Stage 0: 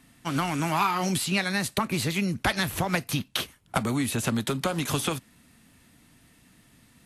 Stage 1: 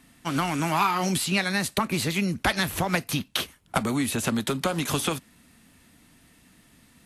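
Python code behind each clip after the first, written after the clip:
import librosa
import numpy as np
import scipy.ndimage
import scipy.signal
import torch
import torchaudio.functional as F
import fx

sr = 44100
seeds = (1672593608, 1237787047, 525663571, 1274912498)

y = fx.peak_eq(x, sr, hz=120.0, db=-5.5, octaves=0.4)
y = F.gain(torch.from_numpy(y), 1.5).numpy()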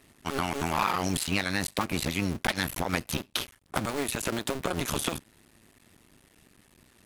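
y = fx.cycle_switch(x, sr, every=2, mode='muted')
y = 10.0 ** (-13.0 / 20.0) * np.tanh(y / 10.0 ** (-13.0 / 20.0))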